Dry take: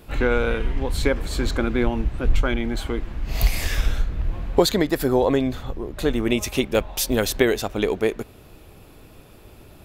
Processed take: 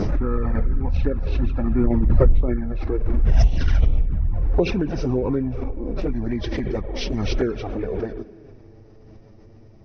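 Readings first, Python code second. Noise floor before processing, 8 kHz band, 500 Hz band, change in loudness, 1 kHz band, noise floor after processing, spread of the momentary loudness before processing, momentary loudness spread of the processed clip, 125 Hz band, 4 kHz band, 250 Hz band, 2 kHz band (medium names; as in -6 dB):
-48 dBFS, -15.5 dB, -4.0 dB, 0.0 dB, -6.0 dB, -47 dBFS, 9 LU, 8 LU, +5.0 dB, -9.0 dB, -0.5 dB, -10.0 dB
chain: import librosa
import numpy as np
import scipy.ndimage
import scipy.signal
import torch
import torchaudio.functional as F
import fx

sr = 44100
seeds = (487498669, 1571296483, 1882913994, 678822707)

y = fx.freq_compress(x, sr, knee_hz=1000.0, ratio=1.5)
y = fx.tilt_shelf(y, sr, db=8.0, hz=890.0)
y = fx.rev_spring(y, sr, rt60_s=2.7, pass_ms=(39,), chirp_ms=70, drr_db=14.5)
y = fx.env_flanger(y, sr, rest_ms=10.4, full_db=-7.0)
y = fx.pre_swell(y, sr, db_per_s=21.0)
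y = F.gain(torch.from_numpy(y), -6.5).numpy()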